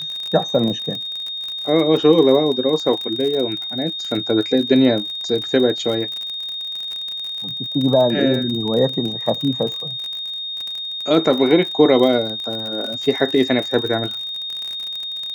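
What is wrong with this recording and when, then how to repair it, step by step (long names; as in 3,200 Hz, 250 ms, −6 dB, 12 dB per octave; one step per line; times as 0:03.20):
surface crackle 43 per second −24 dBFS
whistle 3,700 Hz −25 dBFS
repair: click removal
notch filter 3,700 Hz, Q 30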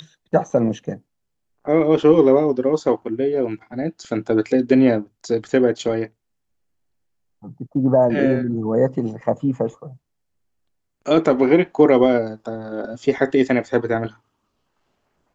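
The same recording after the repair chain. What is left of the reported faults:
none of them is left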